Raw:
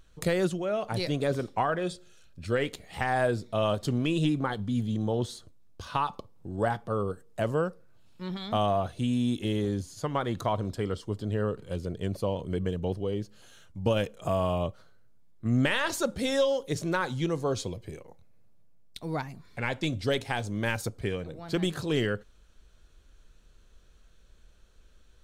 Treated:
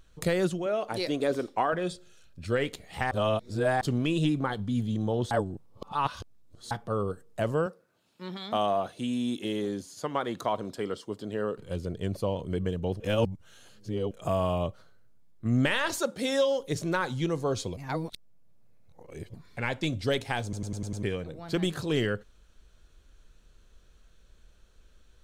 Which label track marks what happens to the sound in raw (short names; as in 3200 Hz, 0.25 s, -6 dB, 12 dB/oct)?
0.660000	1.730000	resonant low shelf 210 Hz -8 dB, Q 1.5
3.110000	3.810000	reverse
5.310000	6.710000	reverse
7.660000	11.580000	HPF 220 Hz
13.000000	14.110000	reverse
15.990000	16.570000	HPF 320 Hz -> 89 Hz
17.770000	19.340000	reverse
20.430000	20.430000	stutter in place 0.10 s, 6 plays